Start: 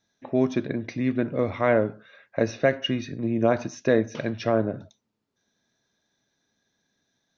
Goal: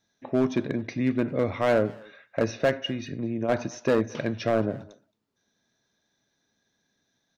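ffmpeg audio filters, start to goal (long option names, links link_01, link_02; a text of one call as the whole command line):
ffmpeg -i in.wav -filter_complex "[0:a]asplit=3[link_01][link_02][link_03];[link_01]afade=type=out:start_time=2.82:duration=0.02[link_04];[link_02]acompressor=threshold=-26dB:ratio=5,afade=type=in:start_time=2.82:duration=0.02,afade=type=out:start_time=3.48:duration=0.02[link_05];[link_03]afade=type=in:start_time=3.48:duration=0.02[link_06];[link_04][link_05][link_06]amix=inputs=3:normalize=0,asoftclip=type=hard:threshold=-15.5dB,asplit=2[link_07][link_08];[link_08]adelay=220,highpass=300,lowpass=3400,asoftclip=type=hard:threshold=-24.5dB,volume=-19dB[link_09];[link_07][link_09]amix=inputs=2:normalize=0" out.wav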